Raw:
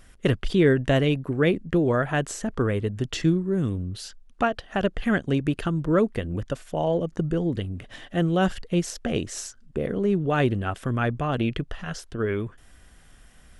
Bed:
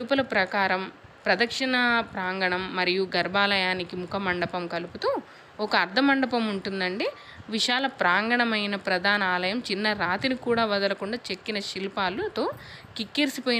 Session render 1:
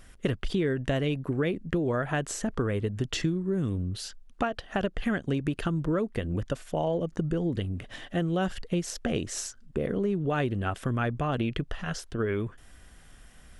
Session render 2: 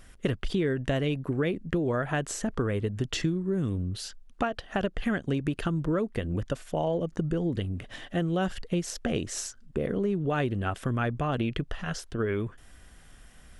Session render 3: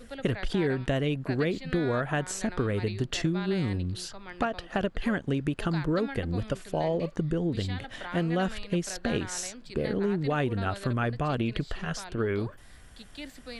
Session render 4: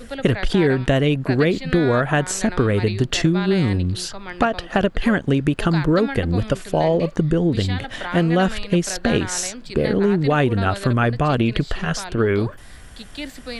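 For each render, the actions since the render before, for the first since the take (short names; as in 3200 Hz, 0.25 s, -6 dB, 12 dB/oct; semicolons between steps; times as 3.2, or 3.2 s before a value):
compressor, threshold -24 dBFS, peak gain reduction 10 dB
nothing audible
add bed -17.5 dB
gain +10 dB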